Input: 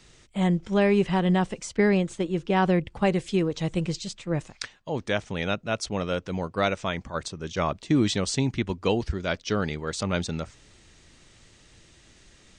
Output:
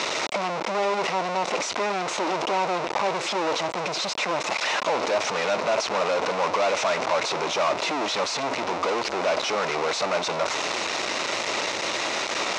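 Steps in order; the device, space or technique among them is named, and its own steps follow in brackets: home computer beeper (infinite clipping; speaker cabinet 520–5200 Hz, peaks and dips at 610 Hz +4 dB, 960 Hz +3 dB, 1700 Hz -7 dB, 3200 Hz -8 dB, 4600 Hz -6 dB); gain +7 dB

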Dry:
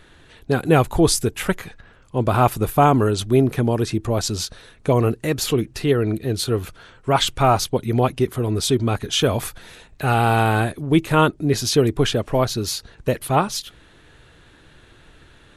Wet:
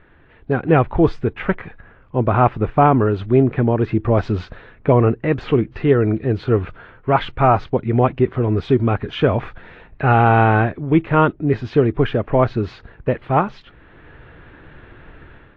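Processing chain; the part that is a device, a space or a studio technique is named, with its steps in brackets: action camera in a waterproof case (LPF 2300 Hz 24 dB/oct; AGC gain up to 9 dB; gain -1 dB; AAC 48 kbps 24000 Hz)

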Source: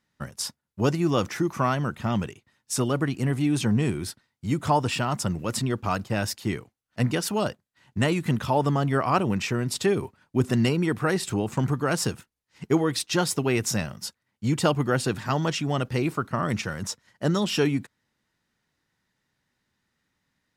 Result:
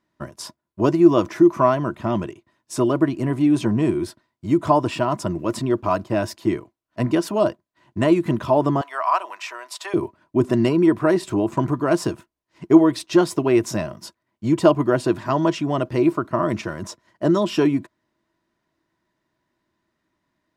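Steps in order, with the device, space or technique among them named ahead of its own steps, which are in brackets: inside a helmet (high shelf 5100 Hz -6 dB; small resonant body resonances 340/630/990 Hz, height 15 dB, ringing for 50 ms); 8.81–9.94 HPF 780 Hz 24 dB/oct; gain -1 dB

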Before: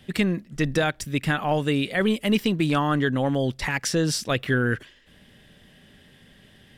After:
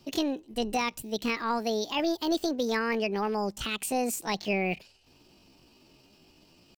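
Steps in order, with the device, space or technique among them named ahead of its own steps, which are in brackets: chipmunk voice (pitch shift +7.5 st); gain -6 dB

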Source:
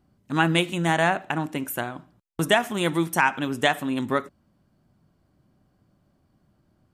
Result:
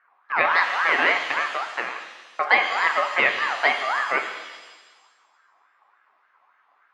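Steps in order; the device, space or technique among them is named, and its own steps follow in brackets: voice changer toy (ring modulator with a swept carrier 1200 Hz, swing 25%, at 3.5 Hz; speaker cabinet 440–3700 Hz, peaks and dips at 1000 Hz +4 dB, 2000 Hz +7 dB, 3400 Hz -8 dB); shimmer reverb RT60 1.3 s, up +7 st, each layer -8 dB, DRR 5.5 dB; gain +2 dB

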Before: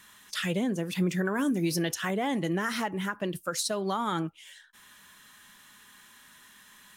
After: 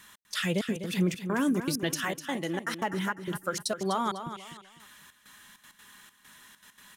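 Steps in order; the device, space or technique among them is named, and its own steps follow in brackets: 2.04–2.73 low shelf 240 Hz -11 dB; trance gate with a delay (step gate "xx..xxxx.x.xx" 197 bpm -60 dB; feedback echo 0.25 s, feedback 31%, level -10 dB); gain +1 dB

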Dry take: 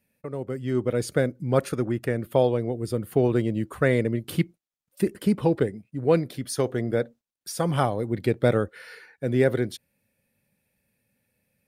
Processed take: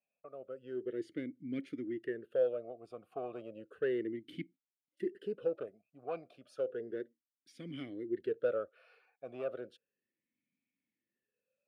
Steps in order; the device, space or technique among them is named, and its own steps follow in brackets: talk box (tube stage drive 14 dB, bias 0.25; vowel sweep a-i 0.33 Hz); gain -3 dB

